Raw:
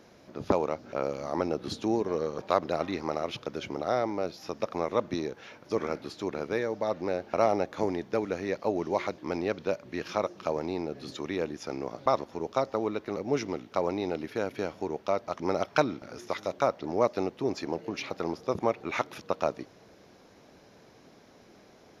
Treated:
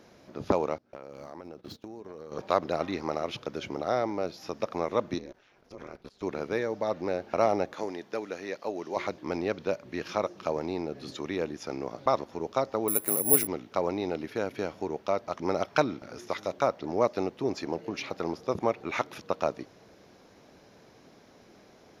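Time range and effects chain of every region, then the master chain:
0:00.78–0:02.32: running median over 5 samples + noise gate −40 dBFS, range −21 dB + downward compressor 16 to 1, threshold −38 dBFS
0:05.18–0:06.23: output level in coarse steps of 20 dB + ring modulation 100 Hz
0:07.74–0:08.97: high-pass filter 510 Hz 6 dB per octave + dynamic equaliser 900 Hz, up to −3 dB, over −39 dBFS, Q 0.71 + notch filter 2,200 Hz, Q 21
0:12.88–0:13.47: bad sample-rate conversion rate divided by 4×, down filtered, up zero stuff + upward compression, threshold −27 dBFS
whole clip: no processing

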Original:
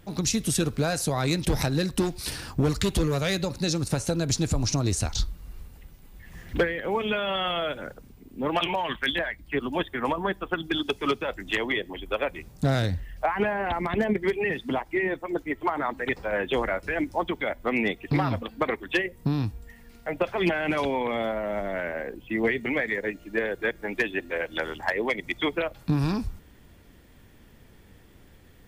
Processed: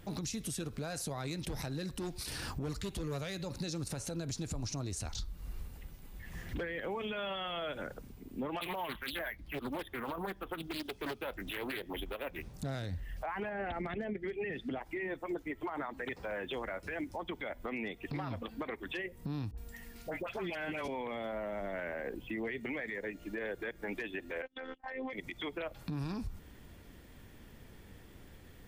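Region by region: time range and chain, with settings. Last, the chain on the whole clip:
0:08.61–0:12.54: bad sample-rate conversion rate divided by 3×, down filtered, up hold + highs frequency-modulated by the lows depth 0.51 ms
0:13.49–0:14.81: low-pass filter 3,000 Hz 6 dB per octave + parametric band 990 Hz −15 dB 0.3 octaves
0:16.05–0:17.08: high-pass filter 45 Hz + log-companded quantiser 8 bits
0:19.51–0:20.88: high-shelf EQ 3,600 Hz +6 dB + all-pass dispersion highs, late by 67 ms, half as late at 1,000 Hz
0:24.42–0:25.13: noise gate −35 dBFS, range −29 dB + high-frequency loss of the air 170 metres + phases set to zero 261 Hz
whole clip: downward compressor, threshold −32 dBFS; brickwall limiter −29 dBFS; level −1 dB

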